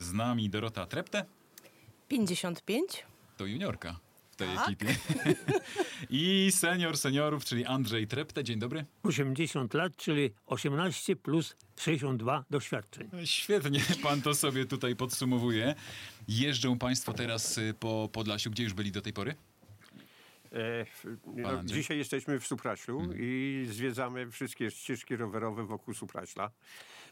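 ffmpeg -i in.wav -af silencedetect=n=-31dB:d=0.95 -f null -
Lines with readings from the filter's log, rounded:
silence_start: 19.31
silence_end: 20.56 | silence_duration: 1.25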